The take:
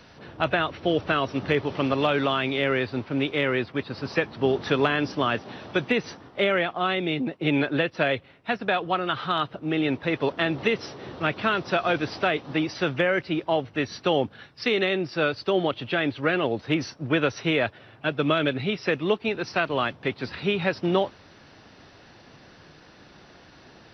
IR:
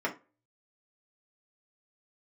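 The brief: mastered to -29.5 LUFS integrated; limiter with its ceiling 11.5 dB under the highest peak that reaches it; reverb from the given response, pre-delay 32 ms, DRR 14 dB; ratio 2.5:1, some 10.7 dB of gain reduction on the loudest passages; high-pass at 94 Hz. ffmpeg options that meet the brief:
-filter_complex "[0:a]highpass=94,acompressor=threshold=-35dB:ratio=2.5,alimiter=level_in=5.5dB:limit=-24dB:level=0:latency=1,volume=-5.5dB,asplit=2[a][b];[1:a]atrim=start_sample=2205,adelay=32[c];[b][c]afir=irnorm=-1:irlink=0,volume=-22dB[d];[a][d]amix=inputs=2:normalize=0,volume=10dB"

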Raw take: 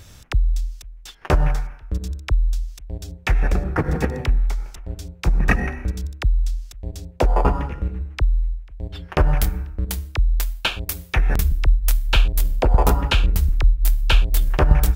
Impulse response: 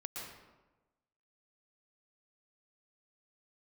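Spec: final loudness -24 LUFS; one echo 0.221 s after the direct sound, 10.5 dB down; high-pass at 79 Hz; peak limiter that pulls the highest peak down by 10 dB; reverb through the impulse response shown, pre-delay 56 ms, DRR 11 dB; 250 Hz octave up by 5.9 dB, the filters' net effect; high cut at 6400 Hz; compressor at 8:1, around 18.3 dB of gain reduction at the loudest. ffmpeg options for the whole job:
-filter_complex "[0:a]highpass=79,lowpass=6.4k,equalizer=f=250:t=o:g=8.5,acompressor=threshold=-32dB:ratio=8,alimiter=level_in=0.5dB:limit=-24dB:level=0:latency=1,volume=-0.5dB,aecho=1:1:221:0.299,asplit=2[a][b];[1:a]atrim=start_sample=2205,adelay=56[c];[b][c]afir=irnorm=-1:irlink=0,volume=-10.5dB[d];[a][d]amix=inputs=2:normalize=0,volume=14.5dB"

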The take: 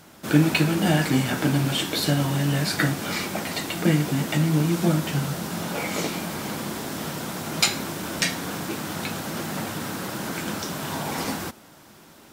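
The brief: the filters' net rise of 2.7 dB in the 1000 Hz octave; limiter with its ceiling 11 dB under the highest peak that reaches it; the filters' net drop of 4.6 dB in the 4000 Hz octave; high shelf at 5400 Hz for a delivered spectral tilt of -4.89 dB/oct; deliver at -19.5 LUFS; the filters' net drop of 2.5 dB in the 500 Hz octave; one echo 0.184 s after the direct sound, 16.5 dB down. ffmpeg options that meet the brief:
-af "equalizer=f=500:t=o:g=-5,equalizer=f=1k:t=o:g=5.5,equalizer=f=4k:t=o:g=-5,highshelf=f=5.4k:g=-3,alimiter=limit=-17.5dB:level=0:latency=1,aecho=1:1:184:0.15,volume=9dB"

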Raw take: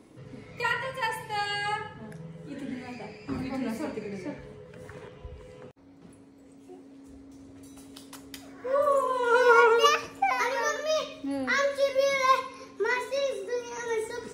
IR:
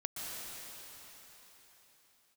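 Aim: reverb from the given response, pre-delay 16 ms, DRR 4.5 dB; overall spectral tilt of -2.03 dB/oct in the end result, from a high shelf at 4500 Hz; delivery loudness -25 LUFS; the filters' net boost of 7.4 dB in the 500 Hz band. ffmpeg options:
-filter_complex "[0:a]equalizer=f=500:t=o:g=8,highshelf=f=4.5k:g=-4,asplit=2[a][b];[1:a]atrim=start_sample=2205,adelay=16[c];[b][c]afir=irnorm=-1:irlink=0,volume=-6.5dB[d];[a][d]amix=inputs=2:normalize=0,volume=-4dB"

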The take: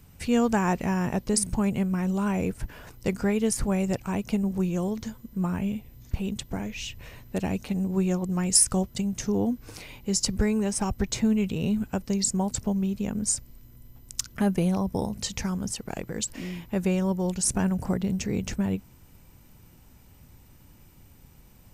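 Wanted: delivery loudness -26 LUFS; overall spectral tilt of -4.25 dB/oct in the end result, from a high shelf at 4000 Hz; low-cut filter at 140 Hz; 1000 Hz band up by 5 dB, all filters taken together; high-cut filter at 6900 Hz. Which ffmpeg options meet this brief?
-af "highpass=140,lowpass=6.9k,equalizer=f=1k:t=o:g=6,highshelf=f=4k:g=6,volume=1dB"

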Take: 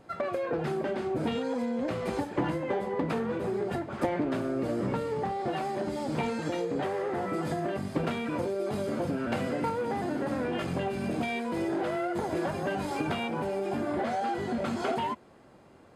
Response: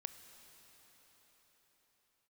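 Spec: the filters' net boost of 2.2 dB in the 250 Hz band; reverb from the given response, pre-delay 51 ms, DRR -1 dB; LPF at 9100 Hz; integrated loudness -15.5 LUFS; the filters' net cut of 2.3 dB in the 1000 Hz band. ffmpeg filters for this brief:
-filter_complex "[0:a]lowpass=9.1k,equalizer=f=250:t=o:g=3,equalizer=f=1k:t=o:g=-3.5,asplit=2[a][b];[1:a]atrim=start_sample=2205,adelay=51[c];[b][c]afir=irnorm=-1:irlink=0,volume=4.5dB[d];[a][d]amix=inputs=2:normalize=0,volume=11.5dB"

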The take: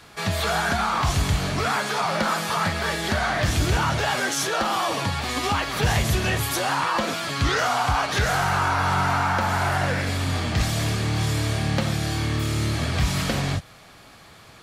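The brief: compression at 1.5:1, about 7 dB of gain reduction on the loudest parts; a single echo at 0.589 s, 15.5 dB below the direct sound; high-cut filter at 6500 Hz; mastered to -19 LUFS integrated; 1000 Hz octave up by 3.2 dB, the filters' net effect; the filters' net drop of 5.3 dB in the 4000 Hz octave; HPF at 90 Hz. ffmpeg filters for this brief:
-af "highpass=90,lowpass=6.5k,equalizer=f=1k:t=o:g=4.5,equalizer=f=4k:t=o:g=-6.5,acompressor=threshold=-37dB:ratio=1.5,aecho=1:1:589:0.168,volume=10dB"

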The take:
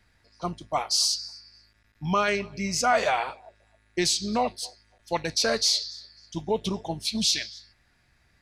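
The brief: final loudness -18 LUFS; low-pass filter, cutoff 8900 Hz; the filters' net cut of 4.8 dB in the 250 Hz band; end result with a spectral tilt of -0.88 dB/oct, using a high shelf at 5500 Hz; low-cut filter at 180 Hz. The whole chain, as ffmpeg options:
-af "highpass=180,lowpass=8.9k,equalizer=f=250:t=o:g=-4.5,highshelf=f=5.5k:g=5.5,volume=7dB"

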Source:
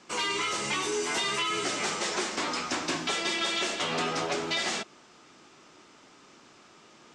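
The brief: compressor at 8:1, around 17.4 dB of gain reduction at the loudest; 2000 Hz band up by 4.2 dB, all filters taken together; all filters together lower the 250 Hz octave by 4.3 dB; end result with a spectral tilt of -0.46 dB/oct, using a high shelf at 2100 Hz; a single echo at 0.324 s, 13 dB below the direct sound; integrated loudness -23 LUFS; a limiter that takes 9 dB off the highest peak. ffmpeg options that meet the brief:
-af "equalizer=f=250:t=o:g=-6.5,equalizer=f=2k:t=o:g=3,highshelf=f=2.1k:g=3.5,acompressor=threshold=-42dB:ratio=8,alimiter=level_in=14.5dB:limit=-24dB:level=0:latency=1,volume=-14.5dB,aecho=1:1:324:0.224,volume=23dB"

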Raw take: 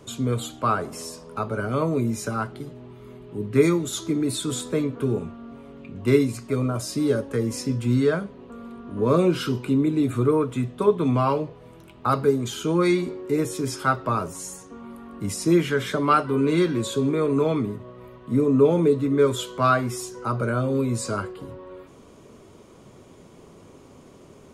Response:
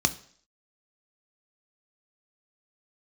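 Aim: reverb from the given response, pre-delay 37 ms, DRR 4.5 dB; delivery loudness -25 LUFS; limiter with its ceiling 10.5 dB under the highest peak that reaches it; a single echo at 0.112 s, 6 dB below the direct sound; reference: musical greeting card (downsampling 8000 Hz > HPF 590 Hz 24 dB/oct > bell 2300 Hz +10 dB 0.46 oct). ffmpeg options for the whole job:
-filter_complex "[0:a]alimiter=limit=-16dB:level=0:latency=1,aecho=1:1:112:0.501,asplit=2[a][b];[1:a]atrim=start_sample=2205,adelay=37[c];[b][c]afir=irnorm=-1:irlink=0,volume=-14.5dB[d];[a][d]amix=inputs=2:normalize=0,aresample=8000,aresample=44100,highpass=f=590:w=0.5412,highpass=f=590:w=1.3066,equalizer=f=2.3k:t=o:w=0.46:g=10,volume=5.5dB"

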